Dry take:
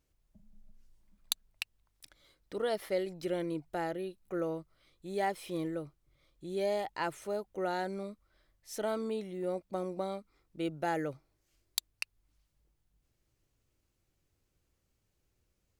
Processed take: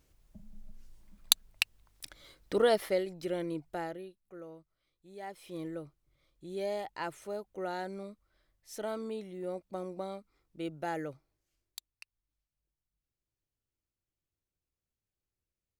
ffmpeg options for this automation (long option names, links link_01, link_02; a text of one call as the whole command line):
ffmpeg -i in.wav -af "volume=19dB,afade=type=out:start_time=2.53:duration=0.52:silence=0.334965,afade=type=out:start_time=3.69:duration=0.5:silence=0.237137,afade=type=in:start_time=5.2:duration=0.53:silence=0.316228,afade=type=out:start_time=11.03:duration=0.87:silence=0.251189" out.wav